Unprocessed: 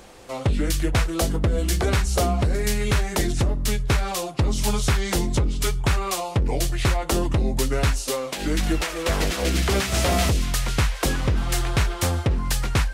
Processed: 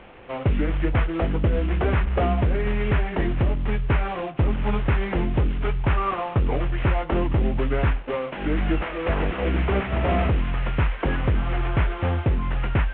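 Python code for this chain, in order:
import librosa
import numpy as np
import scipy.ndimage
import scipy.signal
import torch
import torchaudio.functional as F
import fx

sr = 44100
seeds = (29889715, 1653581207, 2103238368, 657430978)

y = fx.cvsd(x, sr, bps=16000)
y = fx.peak_eq(y, sr, hz=1200.0, db=6.5, octaves=0.28, at=(5.97, 6.65))
y = F.gain(torch.from_numpy(y), 1.0).numpy()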